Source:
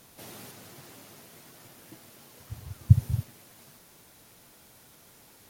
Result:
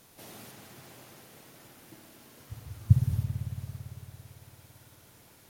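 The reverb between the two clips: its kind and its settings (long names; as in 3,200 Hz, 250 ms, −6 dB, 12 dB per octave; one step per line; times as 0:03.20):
spring reverb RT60 3.3 s, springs 56 ms, chirp 50 ms, DRR 3 dB
level −3 dB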